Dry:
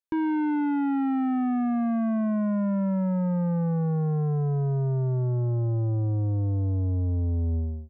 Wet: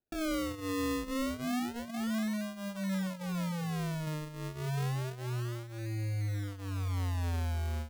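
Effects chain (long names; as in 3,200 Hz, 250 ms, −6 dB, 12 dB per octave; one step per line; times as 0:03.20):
0:03.07–0:04.07: mains-hum notches 50/100/150 Hz
brickwall limiter −34 dBFS, peak gain reduction 12.5 dB
flanger 0.56 Hz, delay 10 ms, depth 8.2 ms, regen −12%
sample-and-hold swept by an LFO 39×, swing 100% 0.29 Hz
level +4 dB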